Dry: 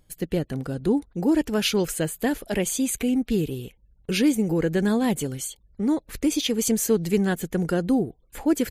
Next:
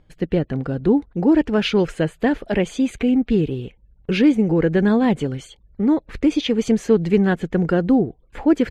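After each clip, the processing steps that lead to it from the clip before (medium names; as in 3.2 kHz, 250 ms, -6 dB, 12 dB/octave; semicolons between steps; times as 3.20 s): low-pass 2.7 kHz 12 dB/octave; trim +5.5 dB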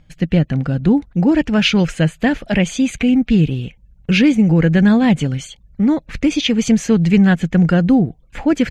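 fifteen-band graphic EQ 160 Hz +5 dB, 400 Hz -10 dB, 1 kHz -4 dB, 2.5 kHz +4 dB, 6.3 kHz +6 dB; trim +5 dB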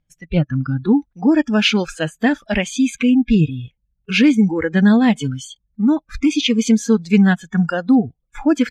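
spectral noise reduction 22 dB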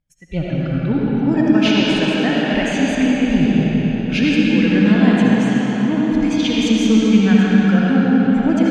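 reverberation RT60 5.6 s, pre-delay 35 ms, DRR -7 dB; trim -6 dB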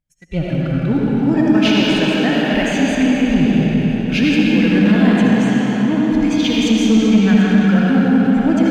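waveshaping leveller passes 1; trim -2 dB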